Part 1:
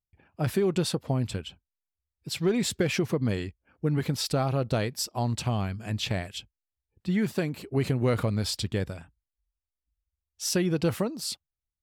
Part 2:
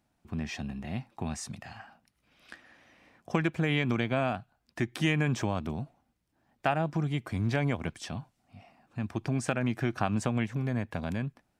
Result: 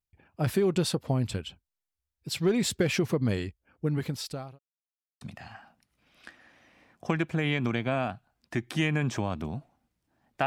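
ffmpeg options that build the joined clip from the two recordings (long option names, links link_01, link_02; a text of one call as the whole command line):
ffmpeg -i cue0.wav -i cue1.wav -filter_complex "[0:a]apad=whole_dur=10.46,atrim=end=10.46,asplit=2[link_01][link_02];[link_01]atrim=end=4.59,asetpts=PTS-STARTPTS,afade=type=out:start_time=3.4:duration=1.19:curve=qsin[link_03];[link_02]atrim=start=4.59:end=5.21,asetpts=PTS-STARTPTS,volume=0[link_04];[1:a]atrim=start=1.46:end=6.71,asetpts=PTS-STARTPTS,afade=type=in:duration=0.004:curve=hsin[link_05];[link_03][link_04][link_05]concat=n=3:v=0:a=1" out.wav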